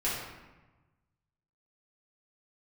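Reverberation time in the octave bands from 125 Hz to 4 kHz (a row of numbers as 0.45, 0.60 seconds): 1.8, 1.4, 1.1, 1.2, 1.0, 0.75 seconds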